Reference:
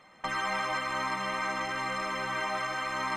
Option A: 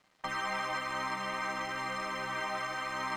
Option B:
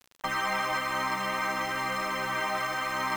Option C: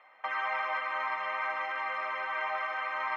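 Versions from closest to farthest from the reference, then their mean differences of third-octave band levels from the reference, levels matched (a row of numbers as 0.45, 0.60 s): A, B, C; 1.0, 2.5, 10.5 dB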